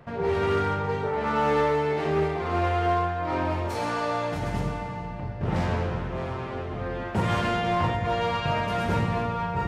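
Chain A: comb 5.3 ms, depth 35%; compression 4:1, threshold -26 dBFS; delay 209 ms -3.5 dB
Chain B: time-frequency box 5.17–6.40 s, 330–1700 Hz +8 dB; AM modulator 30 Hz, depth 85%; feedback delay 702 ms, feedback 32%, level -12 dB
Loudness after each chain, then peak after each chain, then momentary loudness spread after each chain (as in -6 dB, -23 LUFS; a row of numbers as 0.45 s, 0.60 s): -28.5 LUFS, -30.0 LUFS; -16.0 dBFS, -12.0 dBFS; 4 LU, 6 LU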